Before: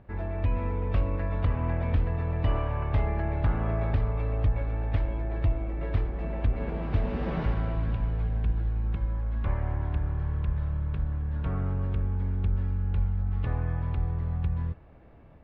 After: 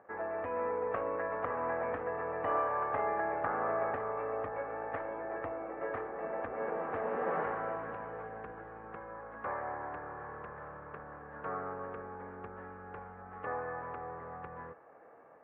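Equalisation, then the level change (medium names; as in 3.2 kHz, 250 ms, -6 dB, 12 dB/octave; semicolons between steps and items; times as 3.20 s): cabinet simulation 420–2000 Hz, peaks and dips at 480 Hz +9 dB, 780 Hz +7 dB, 1.2 kHz +8 dB, 1.7 kHz +6 dB; -2.0 dB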